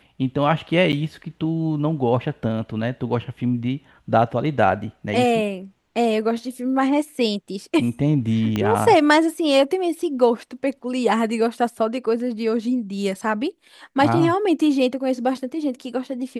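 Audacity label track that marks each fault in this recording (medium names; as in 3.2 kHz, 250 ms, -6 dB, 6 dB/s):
0.920000	0.930000	dropout 9.3 ms
8.560000	8.560000	pop -11 dBFS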